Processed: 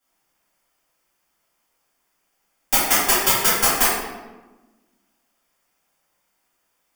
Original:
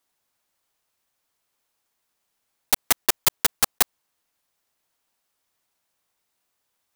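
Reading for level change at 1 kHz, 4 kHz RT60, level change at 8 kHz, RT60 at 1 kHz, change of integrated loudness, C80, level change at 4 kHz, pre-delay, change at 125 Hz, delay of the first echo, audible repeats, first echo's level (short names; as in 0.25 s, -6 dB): +8.5 dB, 0.75 s, +5.0 dB, 1.1 s, +5.0 dB, 2.5 dB, +4.0 dB, 3 ms, +6.5 dB, none, none, none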